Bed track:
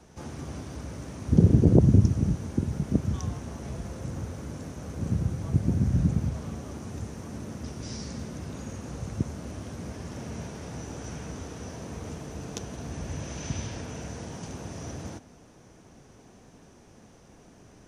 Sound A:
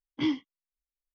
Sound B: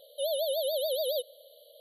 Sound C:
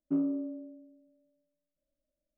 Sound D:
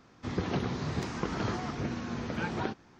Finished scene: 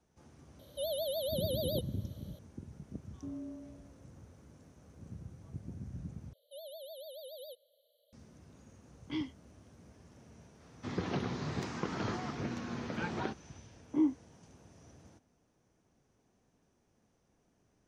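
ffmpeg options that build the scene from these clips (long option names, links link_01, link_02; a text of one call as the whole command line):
ffmpeg -i bed.wav -i cue0.wav -i cue1.wav -i cue2.wav -i cue3.wav -filter_complex "[2:a]asplit=2[link_01][link_02];[1:a]asplit=2[link_03][link_04];[0:a]volume=-20dB[link_05];[3:a]alimiter=level_in=3.5dB:limit=-24dB:level=0:latency=1:release=71,volume=-3.5dB[link_06];[4:a]highpass=89[link_07];[link_04]asuperpass=centerf=430:order=4:qfactor=0.69[link_08];[link_05]asplit=2[link_09][link_10];[link_09]atrim=end=6.334[link_11];[link_02]atrim=end=1.8,asetpts=PTS-STARTPTS,volume=-17.5dB[link_12];[link_10]atrim=start=8.126[link_13];[link_01]atrim=end=1.8,asetpts=PTS-STARTPTS,volume=-5.5dB,afade=type=in:duration=0.004:curve=hsin,afade=type=out:start_time=1.796:duration=0.004:curve=hsin,adelay=590[link_14];[link_06]atrim=end=2.37,asetpts=PTS-STARTPTS,volume=-10dB,afade=type=in:duration=0.004:curve=hsin,afade=type=out:start_time=2.366:duration=0.004:curve=hsin,adelay=3120[link_15];[link_03]atrim=end=1.14,asetpts=PTS-STARTPTS,volume=-9.5dB,afade=type=in:duration=0.004:curve=hsin,afade=type=out:start_time=1.136:duration=0.004:curve=hsin,adelay=8910[link_16];[link_07]atrim=end=2.99,asetpts=PTS-STARTPTS,volume=-3.5dB,afade=type=in:duration=0.004:curve=hsin,afade=type=out:start_time=2.986:duration=0.004:curve=hsin,adelay=10600[link_17];[link_08]atrim=end=1.14,asetpts=PTS-STARTPTS,volume=-0.5dB,afade=type=in:duration=0.004:curve=hsin,afade=type=out:start_time=1.136:duration=0.004:curve=hsin,adelay=13750[link_18];[link_11][link_12]acrossfade=duration=0.004:curve1=hsin:curve2=hsin[link_19];[link_19][link_13]acrossfade=duration=0.004:curve1=hsin:curve2=hsin[link_20];[link_20][link_14][link_15][link_16][link_17][link_18]amix=inputs=6:normalize=0" out.wav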